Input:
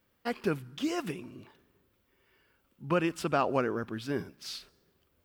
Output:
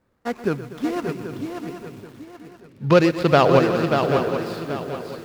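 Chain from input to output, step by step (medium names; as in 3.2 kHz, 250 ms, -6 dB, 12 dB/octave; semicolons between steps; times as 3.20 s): median filter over 15 samples; 1.32–3.59 s: graphic EQ 125/500/2000/4000 Hz +10/+8/+6/+10 dB; shuffle delay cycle 781 ms, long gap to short 3:1, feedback 31%, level -6 dB; bit-crushed delay 122 ms, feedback 80%, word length 8-bit, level -14 dB; trim +7 dB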